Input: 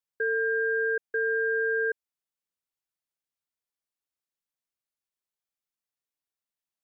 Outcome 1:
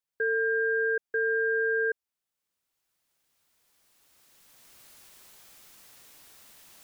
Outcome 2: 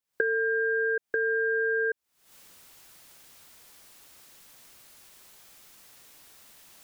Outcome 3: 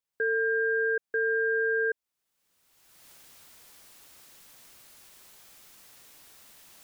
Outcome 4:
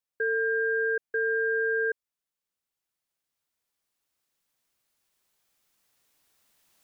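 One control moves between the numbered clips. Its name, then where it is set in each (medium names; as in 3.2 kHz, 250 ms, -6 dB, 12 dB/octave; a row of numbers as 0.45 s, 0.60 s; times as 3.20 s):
recorder AGC, rising by: 13 dB/s, 91 dB/s, 33 dB/s, 5.1 dB/s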